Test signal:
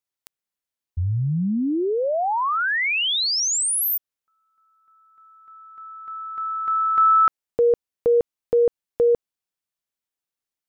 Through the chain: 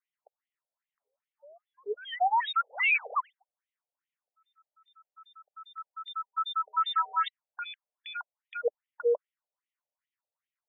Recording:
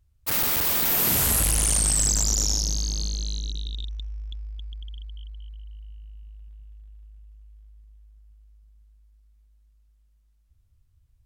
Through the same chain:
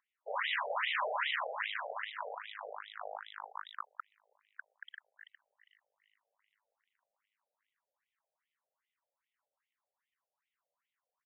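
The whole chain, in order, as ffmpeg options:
ffmpeg -i in.wav -af "highpass=110,equalizer=frequency=260:width_type=q:width=4:gain=-4,equalizer=frequency=380:width_type=q:width=4:gain=-5,equalizer=frequency=590:width_type=q:width=4:gain=6,equalizer=frequency=1000:width_type=q:width=4:gain=9,equalizer=frequency=1900:width_type=q:width=4:gain=8,equalizer=frequency=3400:width_type=q:width=4:gain=6,lowpass=frequency=3900:width=0.5412,lowpass=frequency=3900:width=1.3066,aresample=11025,asoftclip=type=tanh:threshold=-18.5dB,aresample=44100,acrusher=samples=9:mix=1:aa=0.000001,aeval=exprs='0.1*(abs(mod(val(0)/0.1+3,4)-2)-1)':channel_layout=same,afftfilt=real='re*between(b*sr/1024,560*pow(2800/560,0.5+0.5*sin(2*PI*2.5*pts/sr))/1.41,560*pow(2800/560,0.5+0.5*sin(2*PI*2.5*pts/sr))*1.41)':imag='im*between(b*sr/1024,560*pow(2800/560,0.5+0.5*sin(2*PI*2.5*pts/sr))/1.41,560*pow(2800/560,0.5+0.5*sin(2*PI*2.5*pts/sr))*1.41)':win_size=1024:overlap=0.75" out.wav

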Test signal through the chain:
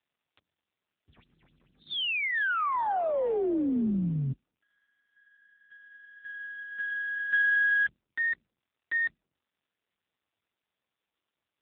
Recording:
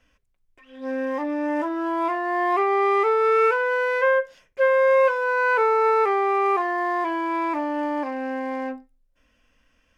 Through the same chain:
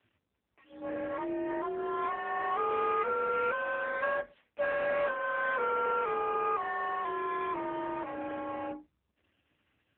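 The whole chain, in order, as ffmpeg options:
ffmpeg -i in.wav -filter_complex "[0:a]aeval=exprs='if(lt(val(0),0),0.447*val(0),val(0))':channel_layout=same,asplit=2[link_01][link_02];[link_02]acompressor=threshold=-31dB:ratio=5,volume=1dB[link_03];[link_01][link_03]amix=inputs=2:normalize=0,afreqshift=43,volume=-8.5dB" -ar 8000 -c:a libopencore_amrnb -b:a 5900 out.amr

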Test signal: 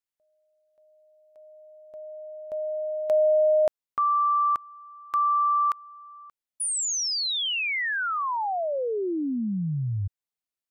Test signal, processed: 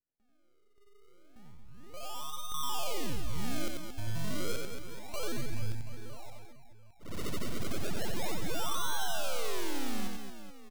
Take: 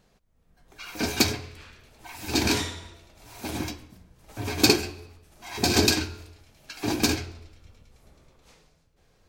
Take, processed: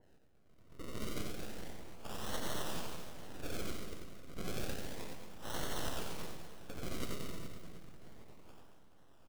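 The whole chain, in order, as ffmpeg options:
ffmpeg -i in.wav -af "highpass=frequency=55:poles=1,acompressor=threshold=-31dB:ratio=10:attack=0.24:release=346:knee=1:detection=peak,aresample=11025,aeval=exprs='abs(val(0))':channel_layout=same,aresample=44100,acrusher=samples=36:mix=1:aa=0.000001:lfo=1:lforange=36:lforate=0.31,aecho=1:1:90|225|427.5|731.2|1187:0.631|0.398|0.251|0.158|0.1,adynamicequalizer=threshold=0.00158:dfrequency=2300:dqfactor=0.7:tfrequency=2300:tqfactor=0.7:attack=5:release=100:ratio=0.4:range=3.5:mode=boostabove:tftype=highshelf" out.wav

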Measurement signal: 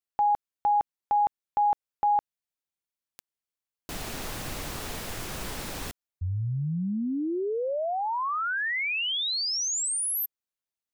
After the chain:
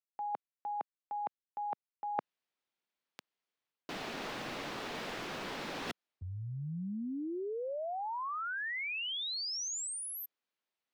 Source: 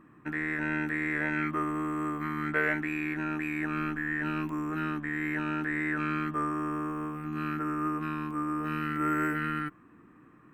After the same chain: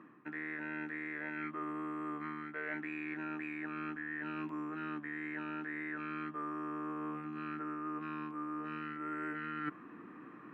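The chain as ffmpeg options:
ffmpeg -i in.wav -filter_complex "[0:a]acrossover=split=170 4800:gain=0.0891 1 0.1[link_01][link_02][link_03];[link_01][link_02][link_03]amix=inputs=3:normalize=0,areverse,acompressor=threshold=-42dB:ratio=16:attack=15:release=802:detection=peak,areverse,volume=6dB" out.wav

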